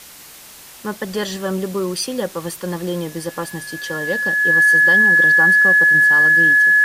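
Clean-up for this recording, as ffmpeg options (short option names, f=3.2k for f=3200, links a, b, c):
-af "bandreject=f=1.7k:w=30,afftdn=nr=21:nf=-40"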